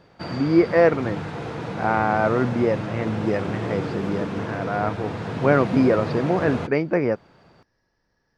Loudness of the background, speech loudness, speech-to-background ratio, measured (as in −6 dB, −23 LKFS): −30.0 LKFS, −23.0 LKFS, 7.0 dB